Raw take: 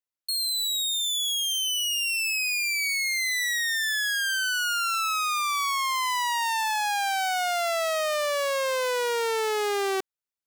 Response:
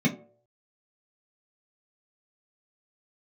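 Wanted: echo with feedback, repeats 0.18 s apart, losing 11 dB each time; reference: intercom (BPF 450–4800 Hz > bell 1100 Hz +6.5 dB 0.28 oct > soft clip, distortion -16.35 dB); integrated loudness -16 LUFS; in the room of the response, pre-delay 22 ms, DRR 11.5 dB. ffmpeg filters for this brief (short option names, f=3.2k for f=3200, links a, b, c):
-filter_complex "[0:a]aecho=1:1:180|360|540:0.282|0.0789|0.0221,asplit=2[a][b];[1:a]atrim=start_sample=2205,adelay=22[c];[b][c]afir=irnorm=-1:irlink=0,volume=-22.5dB[d];[a][d]amix=inputs=2:normalize=0,highpass=450,lowpass=4.8k,equalizer=f=1.1k:t=o:w=0.28:g=6.5,asoftclip=threshold=-20dB,volume=10.5dB"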